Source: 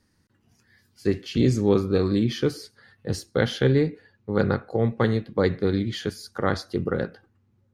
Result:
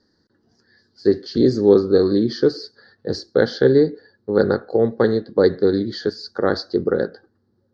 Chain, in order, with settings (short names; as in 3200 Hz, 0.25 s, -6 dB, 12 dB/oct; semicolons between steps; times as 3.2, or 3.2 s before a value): EQ curve 120 Hz 0 dB, 410 Hz +14 dB, 1100 Hz +4 dB, 1700 Hz +9 dB, 2500 Hz -16 dB, 4500 Hz +15 dB, 12000 Hz -30 dB; gain -4.5 dB